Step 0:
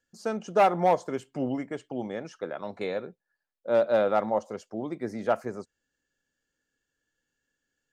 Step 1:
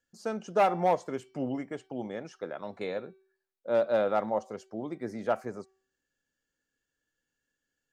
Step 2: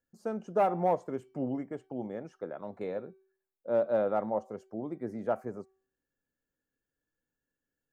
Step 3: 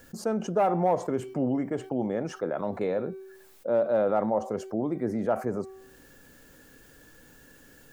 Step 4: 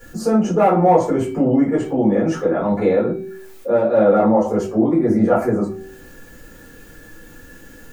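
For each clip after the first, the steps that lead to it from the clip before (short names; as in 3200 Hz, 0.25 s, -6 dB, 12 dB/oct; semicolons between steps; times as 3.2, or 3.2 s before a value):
de-hum 382.3 Hz, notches 16; gain -3 dB
bell 4400 Hz -14.5 dB 2.7 oct
fast leveller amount 50%; gain +1.5 dB
reverb RT60 0.35 s, pre-delay 4 ms, DRR -9.5 dB; gain -2 dB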